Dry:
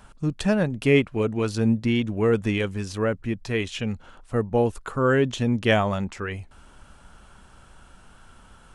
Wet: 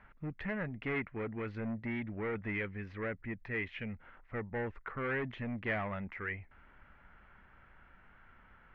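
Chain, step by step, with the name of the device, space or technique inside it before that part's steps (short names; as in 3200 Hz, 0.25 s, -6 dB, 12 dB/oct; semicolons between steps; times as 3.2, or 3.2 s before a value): overdriven synthesiser ladder filter (soft clip -22 dBFS, distortion -9 dB; ladder low-pass 2200 Hz, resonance 70%)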